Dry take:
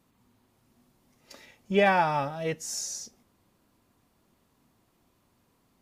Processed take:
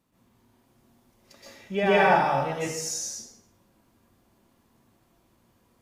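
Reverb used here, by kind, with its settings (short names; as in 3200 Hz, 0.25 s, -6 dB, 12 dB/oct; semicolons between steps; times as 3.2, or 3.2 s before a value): plate-style reverb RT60 0.77 s, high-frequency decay 0.75×, pre-delay 0.11 s, DRR -7.5 dB; gain -5 dB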